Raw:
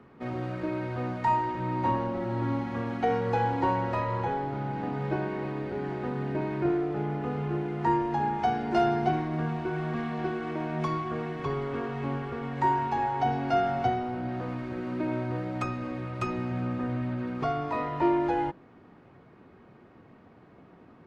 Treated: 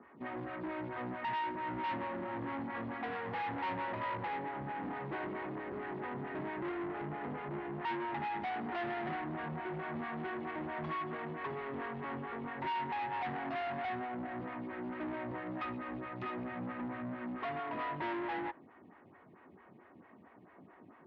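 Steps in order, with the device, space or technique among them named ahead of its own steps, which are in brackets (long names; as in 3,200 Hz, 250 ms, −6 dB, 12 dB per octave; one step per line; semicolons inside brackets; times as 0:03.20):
vibe pedal into a guitar amplifier (phaser with staggered stages 4.5 Hz; tube saturation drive 36 dB, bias 0.4; loudspeaker in its box 86–3,400 Hz, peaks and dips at 130 Hz −5 dB, 470 Hz −5 dB, 1,000 Hz +3 dB, 1,900 Hz +7 dB)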